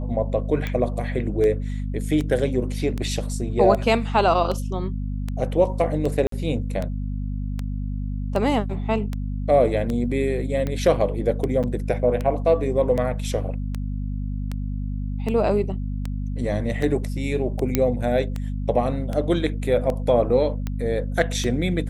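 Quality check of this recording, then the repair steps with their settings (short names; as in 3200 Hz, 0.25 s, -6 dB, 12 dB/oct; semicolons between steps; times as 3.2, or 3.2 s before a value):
hum 50 Hz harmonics 5 -27 dBFS
tick 78 rpm -15 dBFS
6.27–6.32 gap 53 ms
11.63–11.64 gap 7 ms
17.75 pop -4 dBFS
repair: de-click; de-hum 50 Hz, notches 5; interpolate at 6.27, 53 ms; interpolate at 11.63, 7 ms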